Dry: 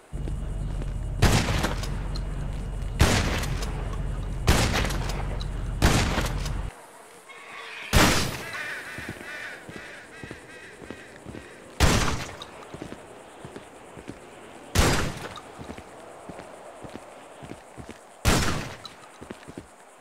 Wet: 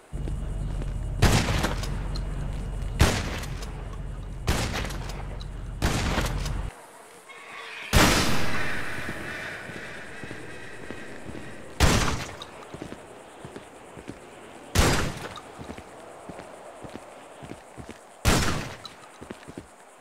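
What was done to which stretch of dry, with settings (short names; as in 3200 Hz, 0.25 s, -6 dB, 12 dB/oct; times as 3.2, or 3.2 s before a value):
3.1–6.04 gain -5 dB
8.04–11.44 reverb throw, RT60 2.9 s, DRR 2 dB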